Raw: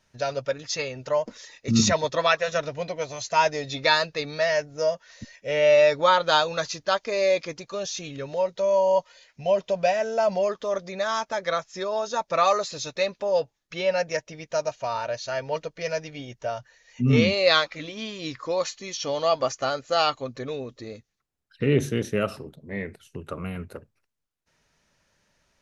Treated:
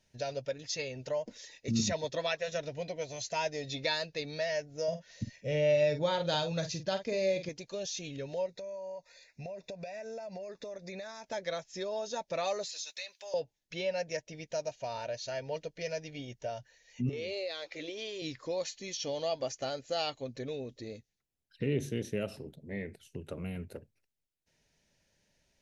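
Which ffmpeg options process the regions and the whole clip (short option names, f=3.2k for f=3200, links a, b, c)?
-filter_complex "[0:a]asettb=1/sr,asplit=3[a][b][c];[a]atrim=end=4.884[d];[b]atrim=start=4.88:end=7.49,asetpts=PTS-STARTPTS,afade=t=in:d=0.004:c=qsin,afade=t=out:st=2.606:d=0.004:c=qsin,equalizer=f=120:t=o:w=2.2:g=13.5,asplit=2[e][f];[f]adelay=47,volume=-10dB[g];[e][g]amix=inputs=2:normalize=0,atrim=end_sample=115101[h];[c]atrim=start=7.486[i];[d][h]acrossfade=d=0.004:c1=hsin:c2=qsin[j];[j][i]acrossfade=d=0.004:c1=qsin:c2=hsin,asettb=1/sr,asplit=3[k][l][m];[k]atrim=end=8.464[n];[l]atrim=start=8.46:end=11.24,asetpts=PTS-STARTPTS,afade=t=in:d=0.004:c=qsin,afade=t=out:st=2.776:d=0.004:c=qsin,acompressor=threshold=-33dB:ratio=12:attack=3.2:release=140:knee=1:detection=peak,asuperstop=centerf=3100:order=12:qfactor=5.1,equalizer=f=2k:t=o:w=0.84:g=3[o];[m]atrim=start=11.236[p];[n][o]acrossfade=d=0.004:c1=hsin:c2=qsin[q];[q][p]acrossfade=d=0.004:c1=qsin:c2=hsin,asettb=1/sr,asplit=3[r][s][t];[r]atrim=end=12.694[u];[s]atrim=start=12.69:end=13.34,asetpts=PTS-STARTPTS,afade=t=in:d=0.004:c=qsin,afade=t=out:st=0.646:d=0.004:c=qsin,highpass=1.3k,highshelf=f=4.6k:g=8,acompressor=threshold=-33dB:ratio=3:attack=3.2:release=140:knee=1:detection=peak[v];[t]atrim=start=13.336[w];[u][v]acrossfade=d=0.004:c1=hsin:c2=qsin[x];[x][w]acrossfade=d=0.004:c1=qsin:c2=hsin,asettb=1/sr,asplit=3[y][z][aa];[y]atrim=end=17.094[ab];[z]atrim=start=17.09:end=18.22,asetpts=PTS-STARTPTS,afade=t=in:d=0.004:c=qsin,afade=t=out:st=1.126:d=0.004:c=qsin,lowshelf=f=290:t=q:w=3:g=-7.5,acompressor=threshold=-26dB:ratio=10:attack=3.2:release=140:knee=1:detection=peak[ac];[aa]atrim=start=18.216[ad];[ab][ac]acrossfade=d=0.004:c1=hsin:c2=qsin[ae];[ae][ad]acrossfade=d=0.004:c1=qsin:c2=hsin,equalizer=f=1.2k:w=2.3:g=-14.5,acompressor=threshold=-33dB:ratio=1.5,volume=-4dB"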